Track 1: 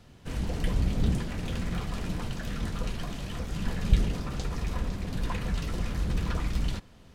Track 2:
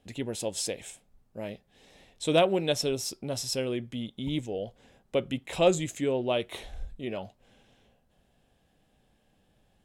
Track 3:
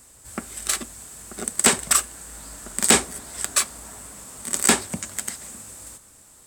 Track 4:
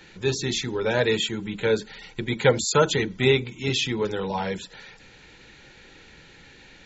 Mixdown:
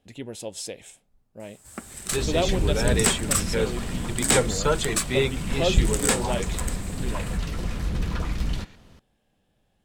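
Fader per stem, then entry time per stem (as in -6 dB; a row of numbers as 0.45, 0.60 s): +2.0, -2.5, -5.5, -4.0 dB; 1.85, 0.00, 1.40, 1.90 s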